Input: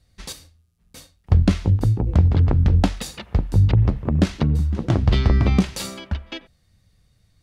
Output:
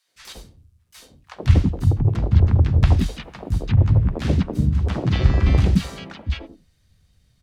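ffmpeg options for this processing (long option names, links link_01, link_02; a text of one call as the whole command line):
ffmpeg -i in.wav -filter_complex "[0:a]acrossover=split=270|880[link_01][link_02][link_03];[link_02]adelay=80[link_04];[link_01]adelay=170[link_05];[link_05][link_04][link_03]amix=inputs=3:normalize=0,asplit=3[link_06][link_07][link_08];[link_07]asetrate=37084,aresample=44100,atempo=1.18921,volume=-4dB[link_09];[link_08]asetrate=58866,aresample=44100,atempo=0.749154,volume=-7dB[link_10];[link_06][link_09][link_10]amix=inputs=3:normalize=0,acrossover=split=3900[link_11][link_12];[link_12]acompressor=threshold=-41dB:ratio=4:attack=1:release=60[link_13];[link_11][link_13]amix=inputs=2:normalize=0,volume=-1.5dB" out.wav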